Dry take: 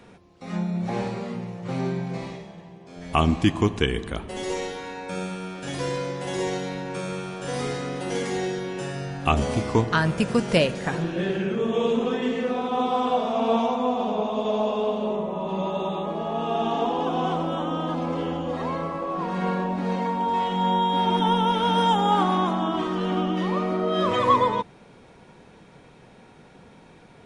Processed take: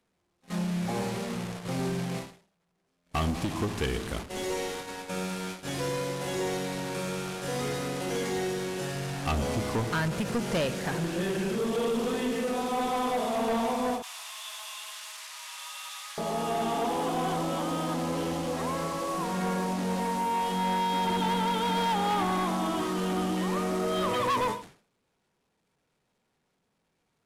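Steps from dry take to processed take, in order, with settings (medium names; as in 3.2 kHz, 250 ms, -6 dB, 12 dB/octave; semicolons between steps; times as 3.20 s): one-bit delta coder 64 kbps, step -30 dBFS; gate -33 dBFS, range -39 dB; 14.02–16.18 s: inverse Chebyshev high-pass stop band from 320 Hz, stop band 70 dB; saturation -22 dBFS, distortion -10 dB; endings held to a fixed fall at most 130 dB/s; trim -1.5 dB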